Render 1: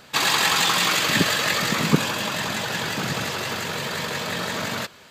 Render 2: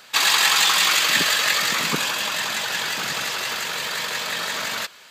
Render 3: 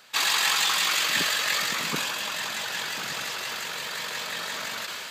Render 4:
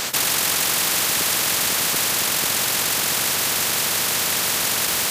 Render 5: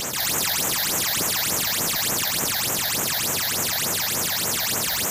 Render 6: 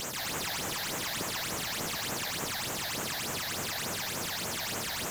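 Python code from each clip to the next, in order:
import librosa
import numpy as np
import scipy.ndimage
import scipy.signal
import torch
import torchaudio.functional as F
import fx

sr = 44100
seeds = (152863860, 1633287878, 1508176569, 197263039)

y1 = fx.highpass(x, sr, hz=150.0, slope=6)
y1 = fx.tilt_shelf(y1, sr, db=-7.0, hz=650.0)
y1 = F.gain(torch.from_numpy(y1), -3.0).numpy()
y2 = fx.sustainer(y1, sr, db_per_s=20.0)
y2 = F.gain(torch.from_numpy(y2), -6.5).numpy()
y3 = y2 + 10.0 ** (-6.0 / 20.0) * np.pad(y2, (int(493 * sr / 1000.0), 0))[:len(y2)]
y3 = fx.spectral_comp(y3, sr, ratio=10.0)
y3 = F.gain(torch.from_numpy(y3), 3.5).numpy()
y4 = fx.transient(y3, sr, attack_db=-7, sustain_db=7)
y4 = fx.phaser_stages(y4, sr, stages=8, low_hz=330.0, high_hz=4300.0, hz=3.4, feedback_pct=45)
y5 = fx.slew_limit(y4, sr, full_power_hz=270.0)
y5 = F.gain(torch.from_numpy(y5), -7.5).numpy()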